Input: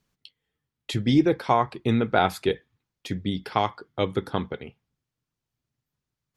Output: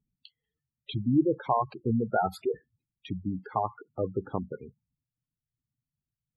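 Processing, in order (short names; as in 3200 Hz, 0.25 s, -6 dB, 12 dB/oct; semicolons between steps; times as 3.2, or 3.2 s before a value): spectral gate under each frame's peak -10 dB strong; gain -4 dB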